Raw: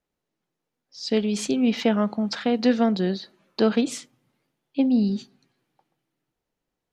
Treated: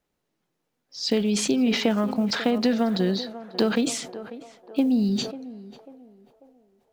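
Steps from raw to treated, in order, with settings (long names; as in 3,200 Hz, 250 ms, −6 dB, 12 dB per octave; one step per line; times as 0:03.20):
one scale factor per block 7 bits
downward compressor 4 to 1, threshold −24 dBFS, peak gain reduction 9 dB
on a send: feedback echo with a band-pass in the loop 543 ms, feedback 53%, band-pass 690 Hz, level −12 dB
on the sum: level that may fall only so fast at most 77 dB per second
level +4.5 dB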